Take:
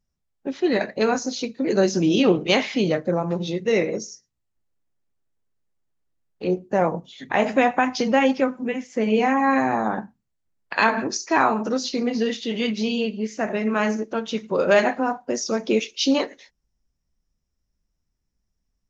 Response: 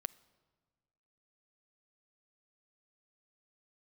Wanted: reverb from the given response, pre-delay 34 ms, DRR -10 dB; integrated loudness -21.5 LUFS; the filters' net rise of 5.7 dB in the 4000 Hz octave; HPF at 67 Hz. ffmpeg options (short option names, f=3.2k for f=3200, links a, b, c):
-filter_complex "[0:a]highpass=67,equalizer=f=4k:t=o:g=7.5,asplit=2[a][b];[1:a]atrim=start_sample=2205,adelay=34[c];[b][c]afir=irnorm=-1:irlink=0,volume=12.5dB[d];[a][d]amix=inputs=2:normalize=0,volume=-10dB"